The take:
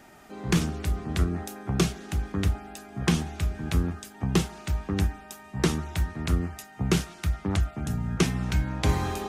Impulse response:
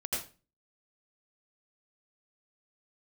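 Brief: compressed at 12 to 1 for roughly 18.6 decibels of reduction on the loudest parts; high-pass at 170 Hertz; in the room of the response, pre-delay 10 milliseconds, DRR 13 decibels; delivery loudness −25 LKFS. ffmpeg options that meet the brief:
-filter_complex "[0:a]highpass=170,acompressor=threshold=-38dB:ratio=12,asplit=2[link_01][link_02];[1:a]atrim=start_sample=2205,adelay=10[link_03];[link_02][link_03]afir=irnorm=-1:irlink=0,volume=-17.5dB[link_04];[link_01][link_04]amix=inputs=2:normalize=0,volume=18dB"

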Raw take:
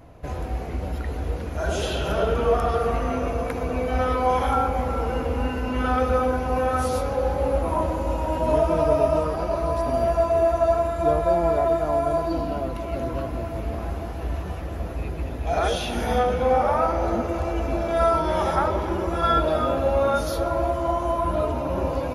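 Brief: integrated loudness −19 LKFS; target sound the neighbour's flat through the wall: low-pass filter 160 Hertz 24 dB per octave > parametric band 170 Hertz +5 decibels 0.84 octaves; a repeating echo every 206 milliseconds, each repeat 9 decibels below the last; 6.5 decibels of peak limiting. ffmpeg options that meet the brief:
ffmpeg -i in.wav -af "alimiter=limit=-14.5dB:level=0:latency=1,lowpass=frequency=160:width=0.5412,lowpass=frequency=160:width=1.3066,equalizer=frequency=170:width_type=o:width=0.84:gain=5,aecho=1:1:206|412|618|824:0.355|0.124|0.0435|0.0152,volume=13dB" out.wav

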